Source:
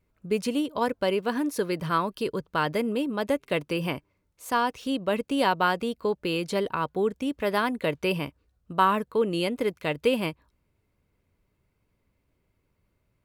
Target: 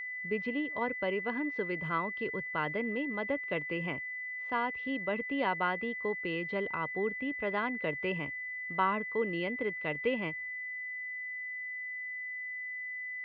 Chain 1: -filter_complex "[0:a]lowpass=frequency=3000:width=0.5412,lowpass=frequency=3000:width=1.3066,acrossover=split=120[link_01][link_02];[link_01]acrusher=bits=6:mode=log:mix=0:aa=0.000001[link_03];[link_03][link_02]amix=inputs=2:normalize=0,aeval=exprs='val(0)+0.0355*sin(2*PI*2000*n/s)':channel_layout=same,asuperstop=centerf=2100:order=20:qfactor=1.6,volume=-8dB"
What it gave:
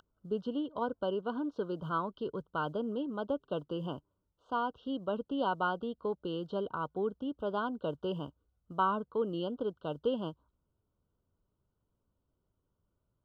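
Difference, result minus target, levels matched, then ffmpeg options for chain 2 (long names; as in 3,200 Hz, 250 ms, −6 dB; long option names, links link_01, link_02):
2,000 Hz band −12.0 dB
-filter_complex "[0:a]lowpass=frequency=3000:width=0.5412,lowpass=frequency=3000:width=1.3066,acrossover=split=120[link_01][link_02];[link_01]acrusher=bits=6:mode=log:mix=0:aa=0.000001[link_03];[link_03][link_02]amix=inputs=2:normalize=0,aeval=exprs='val(0)+0.0355*sin(2*PI*2000*n/s)':channel_layout=same,volume=-8dB"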